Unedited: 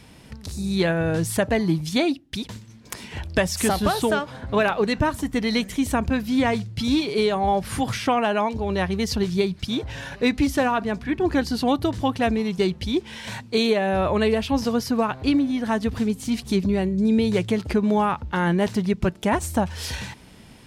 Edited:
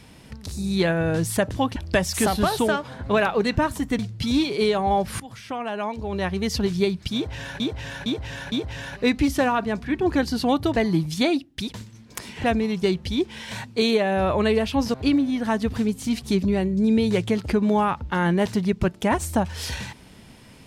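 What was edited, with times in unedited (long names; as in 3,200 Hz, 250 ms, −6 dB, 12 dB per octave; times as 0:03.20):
0:01.51–0:03.19: swap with 0:11.95–0:12.20
0:05.42–0:06.56: remove
0:07.77–0:09.15: fade in, from −19.5 dB
0:09.71–0:10.17: repeat, 4 plays
0:14.70–0:15.15: remove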